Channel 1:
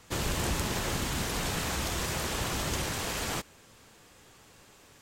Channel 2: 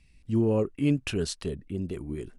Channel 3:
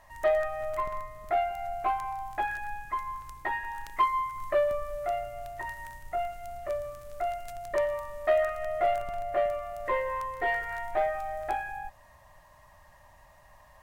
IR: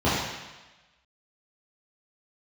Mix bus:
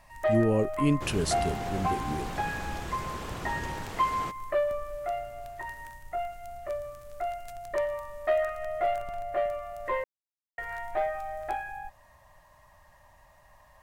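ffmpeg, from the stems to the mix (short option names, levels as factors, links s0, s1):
-filter_complex "[0:a]highshelf=f=2700:g=-11.5,adelay=900,volume=0.668[s0];[1:a]highshelf=f=9100:g=11.5,volume=0.944[s1];[2:a]volume=0.841,asplit=3[s2][s3][s4];[s2]atrim=end=10.04,asetpts=PTS-STARTPTS,afade=t=out:st=10.036:d=0.004:c=hsin[s5];[s3]atrim=start=10.04:end=10.58,asetpts=PTS-STARTPTS,volume=0[s6];[s4]atrim=start=10.58,asetpts=PTS-STARTPTS,afade=t=in:d=0.004:c=hsin[s7];[s5][s6][s7]concat=n=3:v=0:a=1[s8];[s0][s1][s8]amix=inputs=3:normalize=0"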